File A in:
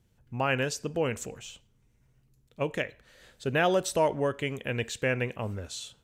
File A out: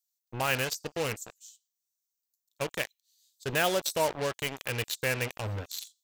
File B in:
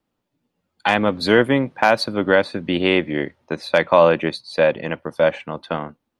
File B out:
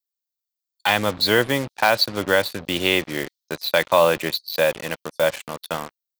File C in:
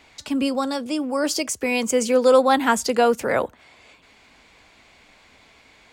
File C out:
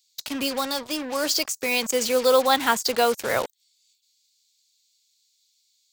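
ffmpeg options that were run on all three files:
ffmpeg -i in.wav -filter_complex "[0:a]equalizer=frequency=100:width_type=o:width=0.67:gain=8,equalizer=frequency=250:width_type=o:width=0.67:gain=-3,equalizer=frequency=4000:width_type=o:width=0.67:gain=7,equalizer=frequency=10000:width_type=o:width=0.67:gain=-11,acrossover=split=5600[link_01][link_02];[link_01]acrusher=bits=4:mix=0:aa=0.5[link_03];[link_03][link_02]amix=inputs=2:normalize=0,crystalizer=i=1:c=0,lowshelf=frequency=410:gain=-5.5,volume=-1.5dB" out.wav

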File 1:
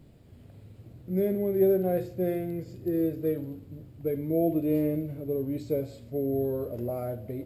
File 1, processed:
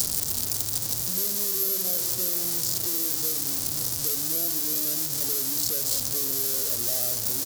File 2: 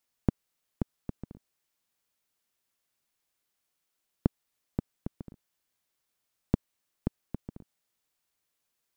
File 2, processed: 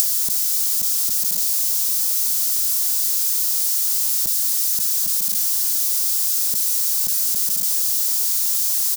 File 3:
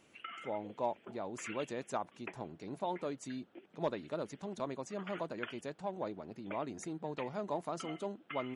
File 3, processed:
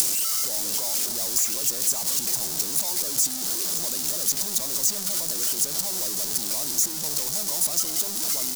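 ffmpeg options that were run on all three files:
ffmpeg -i in.wav -filter_complex "[0:a]aeval=exprs='val(0)+0.5*0.0596*sgn(val(0))':channel_layout=same,acrossover=split=1100|2900[link_01][link_02][link_03];[link_01]acompressor=threshold=-30dB:ratio=4[link_04];[link_02]acompressor=threshold=-44dB:ratio=4[link_05];[link_03]acompressor=threshold=-47dB:ratio=4[link_06];[link_04][link_05][link_06]amix=inputs=3:normalize=0,crystalizer=i=8:c=0,highshelf=frequency=3600:width_type=q:width=1.5:gain=13,asplit=2[link_07][link_08];[link_08]aecho=0:1:547:0.237[link_09];[link_07][link_09]amix=inputs=2:normalize=0,volume=-10dB" out.wav

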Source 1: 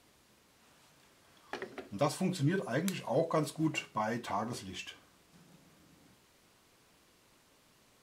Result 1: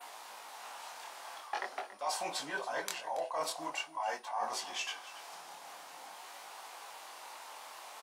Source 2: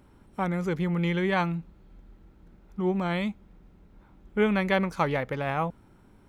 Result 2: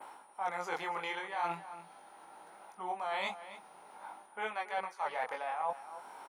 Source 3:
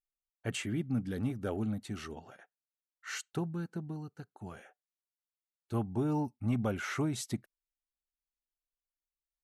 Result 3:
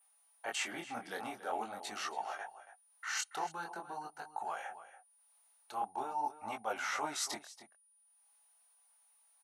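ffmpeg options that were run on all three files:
ffmpeg -i in.wav -filter_complex "[0:a]flanger=delay=18:depth=7.6:speed=0.45,asplit=2[link_01][link_02];[link_02]acompressor=mode=upward:threshold=-37dB:ratio=2.5,volume=-2.5dB[link_03];[link_01][link_03]amix=inputs=2:normalize=0,adynamicequalizer=threshold=0.00141:dfrequency=5500:dqfactor=1.7:tfrequency=5500:tqfactor=1.7:attack=5:release=100:ratio=0.375:range=2.5:mode=boostabove:tftype=bell,agate=range=-14dB:threshold=-59dB:ratio=16:detection=peak,highpass=frequency=810:width_type=q:width=3.6,areverse,acompressor=threshold=-35dB:ratio=12,areverse,aeval=exprs='val(0)+0.000316*sin(2*PI*9600*n/s)':channel_layout=same,asplit=2[link_04][link_05];[link_05]adelay=279.9,volume=-13dB,highshelf=frequency=4000:gain=-6.3[link_06];[link_04][link_06]amix=inputs=2:normalize=0,volume=2dB" out.wav

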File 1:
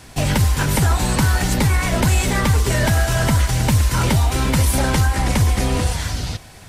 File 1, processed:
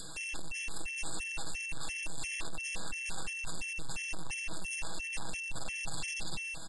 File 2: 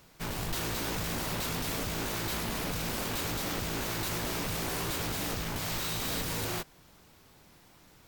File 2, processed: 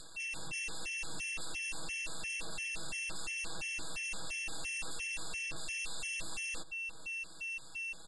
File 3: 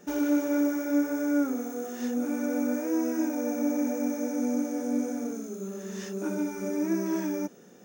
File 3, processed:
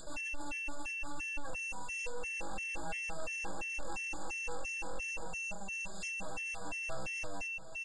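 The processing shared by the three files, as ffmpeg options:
ffmpeg -i in.wav -filter_complex "[0:a]aeval=exprs='abs(val(0))':channel_layout=same,adynamicequalizer=threshold=0.00501:dfrequency=870:dqfactor=3.3:tfrequency=870:tqfactor=3.3:attack=5:release=100:ratio=0.375:range=2:mode=boostabove:tftype=bell,bandreject=frequency=50:width_type=h:width=6,bandreject=frequency=100:width_type=h:width=6,bandreject=frequency=150:width_type=h:width=6,aecho=1:1:6.2:0.88,acompressor=threshold=-13dB:ratio=6,asoftclip=type=tanh:threshold=-22.5dB,acompressor=mode=upward:threshold=-31dB:ratio=2.5,aresample=22050,aresample=44100,asplit=2[link_01][link_02];[link_02]adelay=577.3,volume=-13dB,highshelf=frequency=4000:gain=-13[link_03];[link_01][link_03]amix=inputs=2:normalize=0,aeval=exprs='val(0)+0.0224*sin(2*PI*2700*n/s)':channel_layout=same,highshelf=frequency=3400:gain=11.5,afftfilt=real='re*gt(sin(2*PI*2.9*pts/sr)*(1-2*mod(floor(b*sr/1024/1700),2)),0)':imag='im*gt(sin(2*PI*2.9*pts/sr)*(1-2*mod(floor(b*sr/1024/1700),2)),0)':win_size=1024:overlap=0.75,volume=-8.5dB" out.wav

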